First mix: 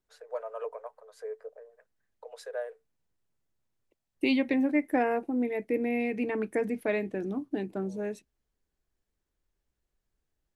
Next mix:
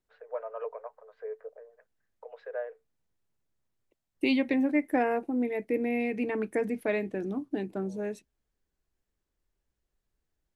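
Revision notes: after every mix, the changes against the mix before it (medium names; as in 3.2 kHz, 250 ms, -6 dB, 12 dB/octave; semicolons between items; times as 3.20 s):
first voice: add low-pass 2.7 kHz 24 dB/octave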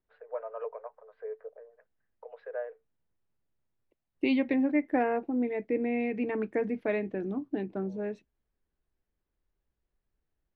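master: add distance through air 230 m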